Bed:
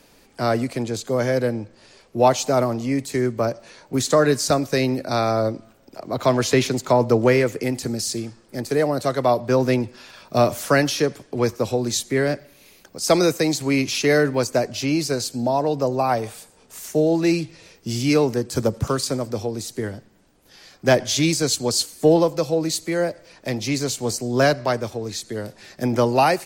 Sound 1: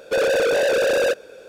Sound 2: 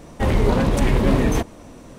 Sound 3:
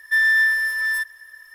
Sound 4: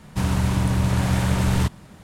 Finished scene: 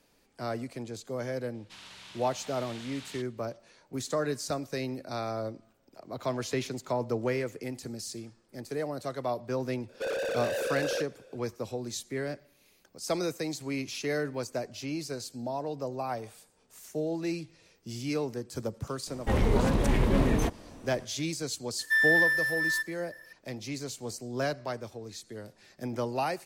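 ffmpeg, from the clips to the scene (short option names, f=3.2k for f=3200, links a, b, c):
-filter_complex "[0:a]volume=-13.5dB[a];[4:a]bandpass=f=3.6k:t=q:w=1.6:csg=0,atrim=end=2.03,asetpts=PTS-STARTPTS,volume=-9dB,afade=t=in:d=0.004:c=hsin,afade=t=out:st=2.026:d=0.004:c=hsin,adelay=1540[b];[1:a]atrim=end=1.48,asetpts=PTS-STARTPTS,volume=-13dB,afade=t=in:d=0.004:c=hsin,afade=t=out:st=1.476:d=0.004:c=hsin,adelay=9890[c];[2:a]atrim=end=1.98,asetpts=PTS-STARTPTS,volume=-7dB,afade=t=in:d=0.004:c=hsin,afade=t=out:st=1.976:d=0.004:c=hsin,adelay=19070[d];[3:a]atrim=end=1.54,asetpts=PTS-STARTPTS,volume=-6.5dB,afade=t=in:d=0.004:c=hsin,afade=t=out:st=1.536:d=0.004:c=hsin,adelay=21790[e];[a][b][c][d][e]amix=inputs=5:normalize=0"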